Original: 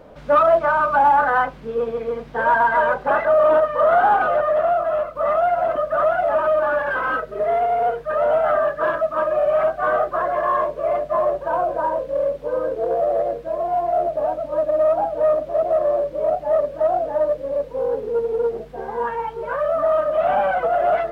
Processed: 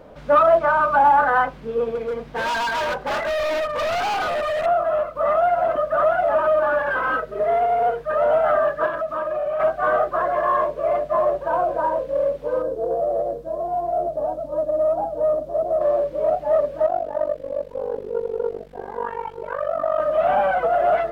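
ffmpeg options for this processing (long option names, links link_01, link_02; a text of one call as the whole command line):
ffmpeg -i in.wav -filter_complex "[0:a]asettb=1/sr,asplit=3[link_01][link_02][link_03];[link_01]atrim=end=1.954[link_04];[link_02]atrim=start=1.95:end=4.66,asetpts=PTS-STARTPTS,afade=type=in:duration=0.004:curve=qsin,afade=type=out:start_time=2.706:duration=0.004:curve=qsin,volume=21.5dB,asoftclip=hard,volume=-21.5dB[link_05];[link_03]atrim=start=4.656[link_06];[link_04][link_05]acrossfade=duration=0.004:curve1=hsin:curve2=qsin[link_07];[link_07][link_06]acrossfade=duration=0.004:curve1=qsin:curve2=hsin,asettb=1/sr,asplit=3[link_08][link_09][link_10];[link_08]atrim=end=8.864[link_11];[link_09]atrim=start=8.86:end=9.6,asetpts=PTS-STARTPTS,afade=type=in:duration=0.004:curve=qsin,afade=type=out:start_time=0.736:duration=0.004:curve=qsin,acompressor=threshold=-22dB:ratio=4:attack=3.2:release=140:knee=1:detection=peak[link_12];[link_10]atrim=start=9.596[link_13];[link_11][link_12]acrossfade=duration=0.004:curve1=hsin:curve2=qsin[link_14];[link_14][link_13]acrossfade=duration=0.004:curve1=qsin:curve2=hsin,asettb=1/sr,asplit=3[link_15][link_16][link_17];[link_15]atrim=end=12.624[link_18];[link_16]atrim=start=12.62:end=15.81,asetpts=PTS-STARTPTS,afade=type=in:duration=0.004:curve=qsin,afade=type=out:start_time=3.186:duration=0.004:curve=qsin,equalizer=frequency=2200:width_type=o:width=1.8:gain=-14[link_19];[link_17]atrim=start=15.806[link_20];[link_18][link_19]acrossfade=duration=0.004:curve1=hsin:curve2=qsin[link_21];[link_21][link_20]acrossfade=duration=0.004:curve1=qsin:curve2=hsin,asettb=1/sr,asplit=3[link_22][link_23][link_24];[link_22]atrim=end=16.864[link_25];[link_23]atrim=start=16.86:end=20,asetpts=PTS-STARTPTS,afade=type=in:duration=0.004:curve=qsin,afade=type=out:start_time=3.136:duration=0.004:curve=qsin,tremolo=f=48:d=0.919[link_26];[link_24]atrim=start=19.996[link_27];[link_25][link_26]acrossfade=duration=0.004:curve1=hsin:curve2=qsin[link_28];[link_28][link_27]acrossfade=duration=0.004:curve1=qsin:curve2=hsin" out.wav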